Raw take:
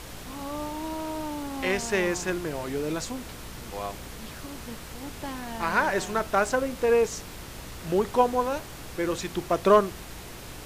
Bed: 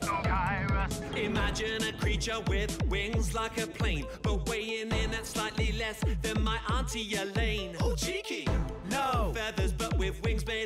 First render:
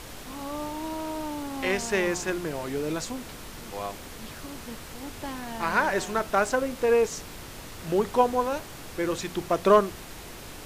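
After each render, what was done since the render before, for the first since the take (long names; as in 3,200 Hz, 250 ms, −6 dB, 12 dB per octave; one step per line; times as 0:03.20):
hum removal 60 Hz, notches 3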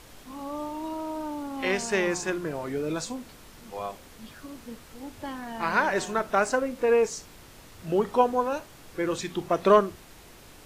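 noise reduction from a noise print 8 dB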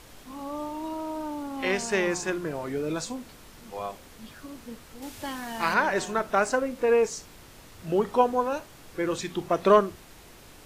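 0:05.02–0:05.74: high-shelf EQ 2,100 Hz +9 dB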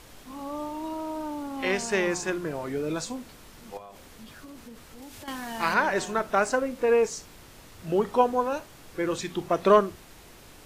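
0:03.77–0:05.28: downward compressor 10 to 1, threshold −40 dBFS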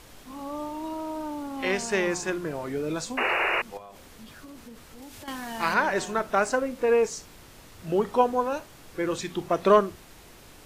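0:03.17–0:03.62: sound drawn into the spectrogram noise 330–2,900 Hz −25 dBFS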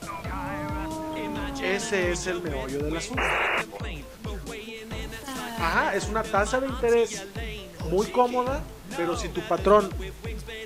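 mix in bed −4.5 dB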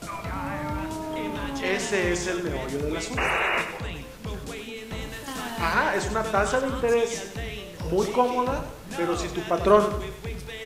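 double-tracking delay 29 ms −10.5 dB
on a send: repeating echo 97 ms, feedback 42%, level −10 dB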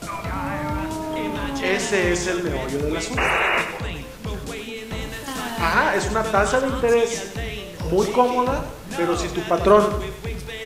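level +4.5 dB
brickwall limiter −2 dBFS, peak gain reduction 2 dB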